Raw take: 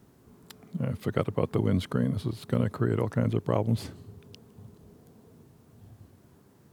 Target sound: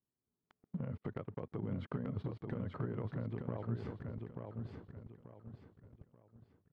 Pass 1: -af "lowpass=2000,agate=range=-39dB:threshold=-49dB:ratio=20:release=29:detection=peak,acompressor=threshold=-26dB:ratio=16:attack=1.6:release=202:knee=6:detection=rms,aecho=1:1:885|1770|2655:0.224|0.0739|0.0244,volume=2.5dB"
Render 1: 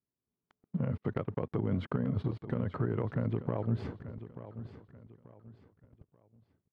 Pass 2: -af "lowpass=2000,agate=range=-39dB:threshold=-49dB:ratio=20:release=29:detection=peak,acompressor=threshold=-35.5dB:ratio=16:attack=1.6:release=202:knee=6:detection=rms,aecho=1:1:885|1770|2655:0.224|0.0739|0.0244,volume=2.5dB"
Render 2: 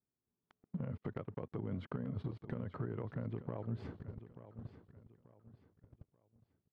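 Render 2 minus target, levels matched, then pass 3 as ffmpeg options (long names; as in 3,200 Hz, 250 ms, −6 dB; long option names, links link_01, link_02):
echo-to-direct −8.5 dB
-af "lowpass=2000,agate=range=-39dB:threshold=-49dB:ratio=20:release=29:detection=peak,acompressor=threshold=-35.5dB:ratio=16:attack=1.6:release=202:knee=6:detection=rms,aecho=1:1:885|1770|2655|3540:0.596|0.197|0.0649|0.0214,volume=2.5dB"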